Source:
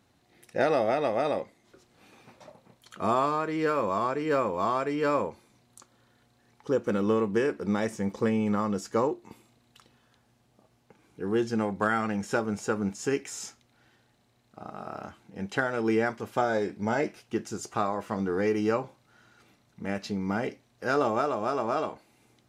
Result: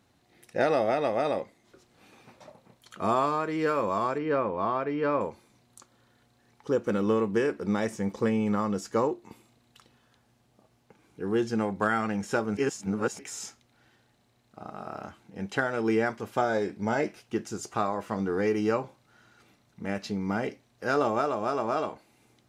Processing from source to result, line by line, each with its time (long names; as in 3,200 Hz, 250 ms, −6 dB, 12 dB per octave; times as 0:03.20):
0:04.18–0:05.21: high-frequency loss of the air 250 metres
0:12.57–0:13.19: reverse